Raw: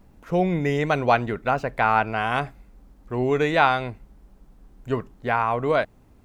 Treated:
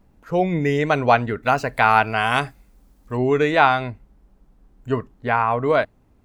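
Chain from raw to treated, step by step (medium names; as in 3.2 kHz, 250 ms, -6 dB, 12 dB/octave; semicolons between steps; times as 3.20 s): spectral noise reduction 7 dB; treble shelf 3.6 kHz -2 dB, from 1.43 s +10.5 dB, from 3.17 s -3.5 dB; trim +3.5 dB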